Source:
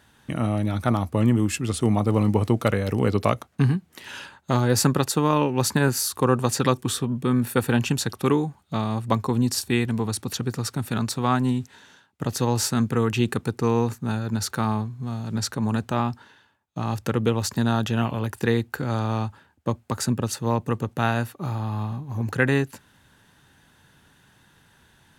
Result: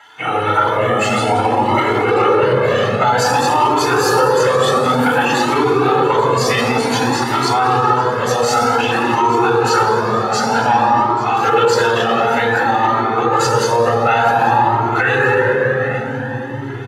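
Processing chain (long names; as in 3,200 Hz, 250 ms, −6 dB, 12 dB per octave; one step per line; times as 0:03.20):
time stretch by phase vocoder 0.67×
high-pass filter 660 Hz 12 dB per octave
high-shelf EQ 2,500 Hz −10 dB
comb filter 2.3 ms, depth 47%
repeating echo 839 ms, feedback 40%, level −19 dB
convolution reverb RT60 4.3 s, pre-delay 3 ms, DRR −3 dB
boost into a limiter +16.5 dB
flanger whose copies keep moving one way rising 0.54 Hz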